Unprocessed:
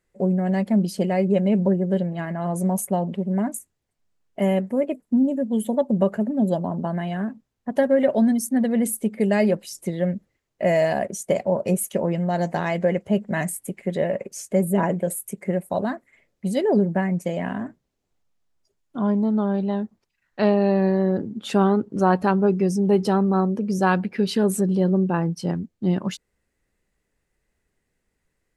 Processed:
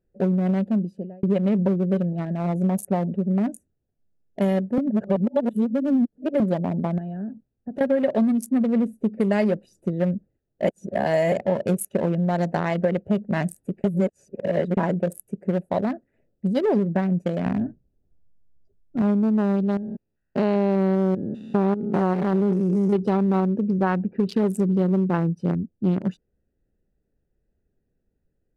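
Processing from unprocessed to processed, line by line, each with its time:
0.47–1.23 fade out
4.78–6.4 reverse
6.98–7.81 compressor 3:1, threshold -31 dBFS
8.58–9.13 high shelf 3800 Hz -8.5 dB
10.67–11.32 reverse
13.84–14.77 reverse
17.46–19.02 low shelf 130 Hz +12 dB
19.77–22.96 stepped spectrum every 0.2 s
23.7–24.29 air absorption 350 m
whole clip: Wiener smoothing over 41 samples; compressor, threshold -20 dBFS; gain +3 dB

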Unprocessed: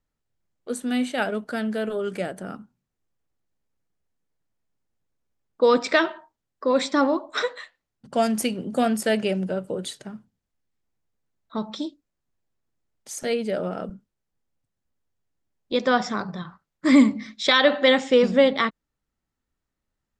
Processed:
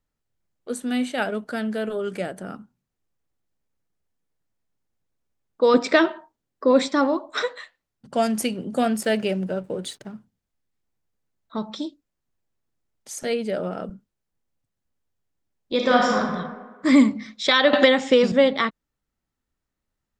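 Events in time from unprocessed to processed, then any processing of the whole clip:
5.74–6.88 bell 300 Hz +6 dB 2 oct
8.92–10.14 backlash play -47.5 dBFS
15.74–16.18 reverb throw, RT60 1.4 s, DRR -2 dB
17.73–18.32 three-band squash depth 100%

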